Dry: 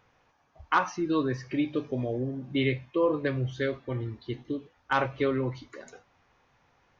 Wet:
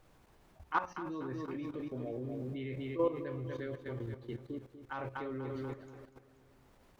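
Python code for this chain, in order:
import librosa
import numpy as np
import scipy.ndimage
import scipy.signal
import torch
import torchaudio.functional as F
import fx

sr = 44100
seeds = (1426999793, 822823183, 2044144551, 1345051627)

y = fx.hum_notches(x, sr, base_hz=60, count=9)
y = fx.echo_feedback(y, sr, ms=242, feedback_pct=45, wet_db=-7)
y = fx.dmg_noise_colour(y, sr, seeds[0], colour='pink', level_db=-57.0)
y = fx.high_shelf(y, sr, hz=2100.0, db=-10.0)
y = fx.level_steps(y, sr, step_db=12)
y = F.gain(torch.from_numpy(y), -3.5).numpy()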